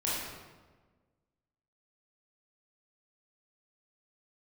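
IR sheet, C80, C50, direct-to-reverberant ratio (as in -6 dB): 1.5 dB, -1.5 dB, -8.0 dB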